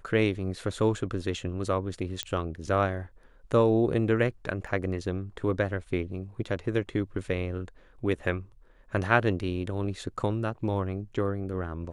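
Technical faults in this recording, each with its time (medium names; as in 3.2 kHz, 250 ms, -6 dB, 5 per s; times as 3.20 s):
2.23 s: pop -15 dBFS
4.67 s: dropout 2.9 ms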